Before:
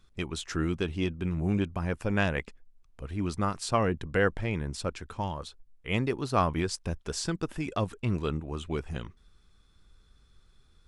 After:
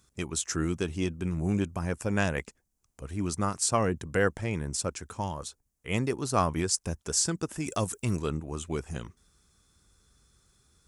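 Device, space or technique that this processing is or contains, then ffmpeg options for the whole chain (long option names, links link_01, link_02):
budget condenser microphone: -filter_complex "[0:a]asettb=1/sr,asplit=3[link_01][link_02][link_03];[link_01]atrim=end=7.664[link_04];[link_02]atrim=start=7.66:end=8.17,asetpts=PTS-STARTPTS,afade=type=in:duration=0.004:curve=qsin,afade=type=out:start_time=0.506:duration=0.004:curve=qsin,aemphasis=mode=production:type=50kf[link_05];[link_03]atrim=start=8.166[link_06];[link_04][link_05]acrossfade=duration=0.004:curve1=hsin:curve2=qsin[link_07];[link_07][link_06]acrossfade=duration=0.004:curve1=qsin:curve2=hsin,highpass=61,highshelf=frequency=5000:width_type=q:width=1.5:gain=9.5"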